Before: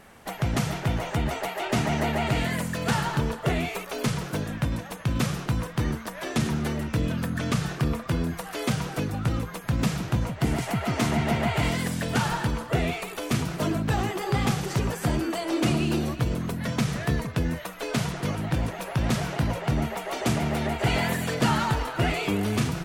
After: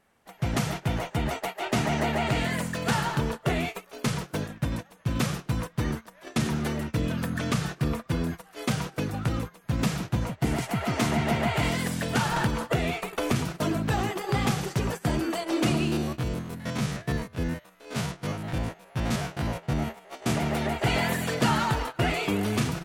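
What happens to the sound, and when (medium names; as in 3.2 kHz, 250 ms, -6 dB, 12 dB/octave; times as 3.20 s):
1.95–2.85 s: peaking EQ 12 kHz -7.5 dB 0.22 oct
12.36–13.36 s: three bands compressed up and down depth 100%
15.87–20.31 s: spectrogram pixelated in time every 50 ms
whole clip: gate -30 dBFS, range -16 dB; bass shelf 130 Hz -3.5 dB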